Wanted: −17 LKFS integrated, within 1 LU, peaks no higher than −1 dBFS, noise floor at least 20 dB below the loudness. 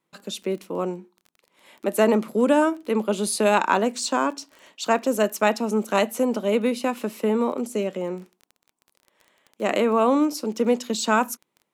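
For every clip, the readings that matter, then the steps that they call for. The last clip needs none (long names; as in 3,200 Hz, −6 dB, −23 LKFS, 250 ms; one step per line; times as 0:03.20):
crackle rate 20 per second; integrated loudness −23.5 LKFS; sample peak −5.0 dBFS; target loudness −17.0 LKFS
→ click removal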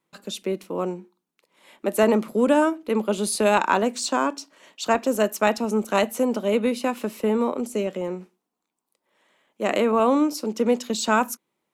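crackle rate 0 per second; integrated loudness −23.5 LKFS; sample peak −5.5 dBFS; target loudness −17.0 LKFS
→ level +6.5 dB
brickwall limiter −1 dBFS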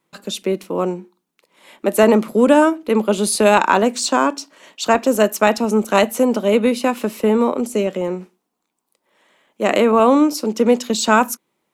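integrated loudness −17.0 LKFS; sample peak −1.0 dBFS; background noise floor −76 dBFS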